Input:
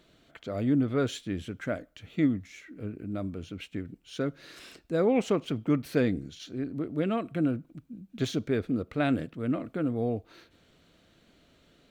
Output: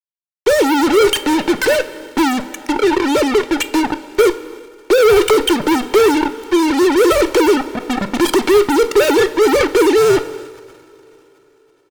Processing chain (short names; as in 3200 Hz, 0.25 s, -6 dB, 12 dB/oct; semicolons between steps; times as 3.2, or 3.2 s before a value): sine-wave speech; fuzz box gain 51 dB, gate -44 dBFS; two-slope reverb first 0.3 s, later 4.1 s, from -18 dB, DRR 14.5 dB; transient shaper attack +2 dB, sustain +8 dB; comb 2.2 ms, depth 53%; gain +1 dB